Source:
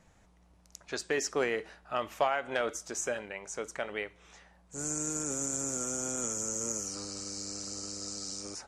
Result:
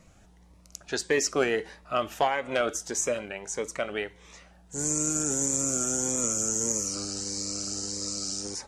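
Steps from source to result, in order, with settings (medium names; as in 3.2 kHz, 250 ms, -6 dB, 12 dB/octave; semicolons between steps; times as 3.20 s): Shepard-style phaser rising 1.6 Hz; trim +7 dB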